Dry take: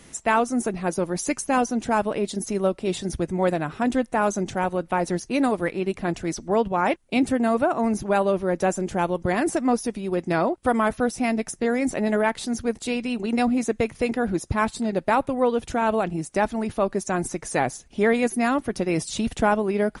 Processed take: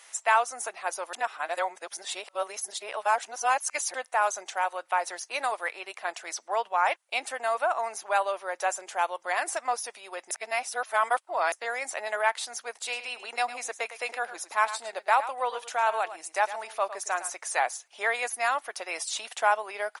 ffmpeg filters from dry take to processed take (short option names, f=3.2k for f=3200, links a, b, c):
-filter_complex "[0:a]asplit=3[a][b][c];[a]afade=t=out:st=12.81:d=0.02[d];[b]aecho=1:1:108:0.224,afade=t=in:st=12.81:d=0.02,afade=t=out:st=17.29:d=0.02[e];[c]afade=t=in:st=17.29:d=0.02[f];[d][e][f]amix=inputs=3:normalize=0,asplit=5[g][h][i][j][k];[g]atrim=end=1.132[l];[h]atrim=start=1.128:end=3.942,asetpts=PTS-STARTPTS,areverse[m];[i]atrim=start=3.938:end=10.312[n];[j]atrim=start=10.308:end=11.522,asetpts=PTS-STARTPTS,areverse[o];[k]atrim=start=11.518[p];[l][m]acrossfade=d=0.004:c1=hsin:c2=hsin[q];[q][n]acrossfade=d=0.004:c1=hsin:c2=hsin[r];[r][o]acrossfade=d=0.004:c1=hsin:c2=hsin[s];[s][p]acrossfade=d=0.004:c1=hsin:c2=hsin,highpass=f=710:w=0.5412,highpass=f=710:w=1.3066"